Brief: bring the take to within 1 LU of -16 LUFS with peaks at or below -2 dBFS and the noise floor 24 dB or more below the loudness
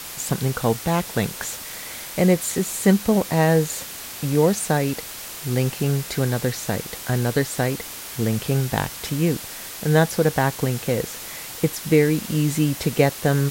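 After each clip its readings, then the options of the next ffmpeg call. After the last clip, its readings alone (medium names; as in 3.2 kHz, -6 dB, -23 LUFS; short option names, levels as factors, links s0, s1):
noise floor -35 dBFS; noise floor target -47 dBFS; loudness -22.5 LUFS; peak level -3.0 dBFS; loudness target -16.0 LUFS
-> -af "afftdn=nr=12:nf=-35"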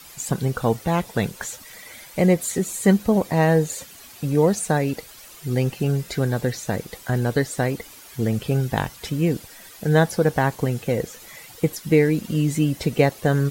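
noise floor -44 dBFS; noise floor target -47 dBFS
-> -af "afftdn=nr=6:nf=-44"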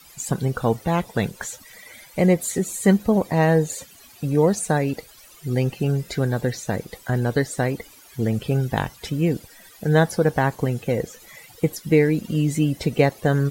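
noise floor -48 dBFS; loudness -22.5 LUFS; peak level -3.5 dBFS; loudness target -16.0 LUFS
-> -af "volume=2.11,alimiter=limit=0.794:level=0:latency=1"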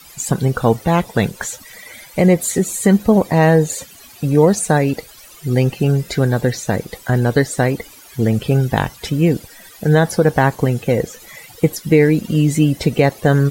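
loudness -16.5 LUFS; peak level -2.0 dBFS; noise floor -42 dBFS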